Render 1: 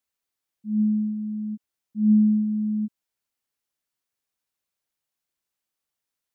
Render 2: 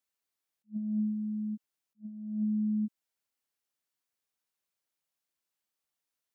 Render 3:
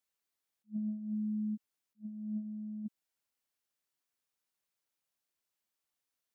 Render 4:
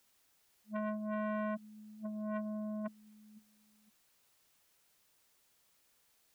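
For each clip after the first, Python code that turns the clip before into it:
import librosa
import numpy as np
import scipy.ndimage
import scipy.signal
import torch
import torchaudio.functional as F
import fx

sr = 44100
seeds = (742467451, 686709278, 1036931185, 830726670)

y1 = fx.low_shelf(x, sr, hz=110.0, db=-7.5)
y1 = fx.over_compress(y1, sr, threshold_db=-25.0, ratio=-0.5)
y1 = fx.attack_slew(y1, sr, db_per_s=410.0)
y1 = F.gain(torch.from_numpy(y1), -5.5).numpy()
y2 = fx.over_compress(y1, sr, threshold_db=-33.0, ratio=-0.5)
y2 = F.gain(torch.from_numpy(y2), -3.0).numpy()
y3 = fx.dmg_noise_colour(y2, sr, seeds[0], colour='white', level_db=-77.0)
y3 = fx.echo_feedback(y3, sr, ms=511, feedback_pct=30, wet_db=-24)
y3 = fx.transformer_sat(y3, sr, knee_hz=850.0)
y3 = F.gain(torch.from_numpy(y3), 4.5).numpy()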